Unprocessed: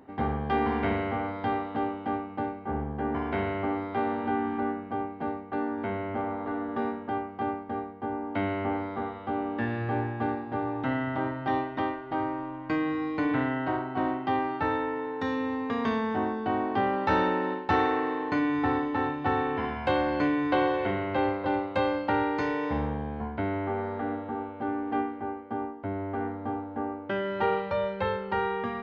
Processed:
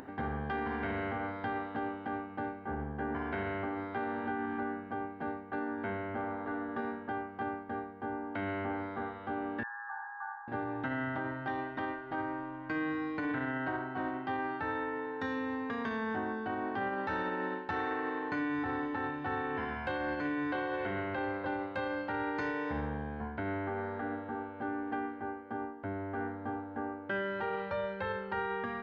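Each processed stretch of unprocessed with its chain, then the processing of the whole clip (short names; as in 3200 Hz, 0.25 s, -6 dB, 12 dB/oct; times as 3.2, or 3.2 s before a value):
9.63–10.48 Chebyshev band-pass 820–1800 Hz, order 5 + tilt -4.5 dB/oct
whole clip: limiter -22 dBFS; bell 1600 Hz +9 dB 0.33 oct; upward compressor, threshold -34 dBFS; gain -5.5 dB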